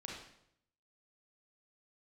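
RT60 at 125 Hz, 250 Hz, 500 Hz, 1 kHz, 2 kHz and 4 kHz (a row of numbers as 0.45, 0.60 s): 0.90, 0.80, 0.75, 0.70, 0.65, 0.65 s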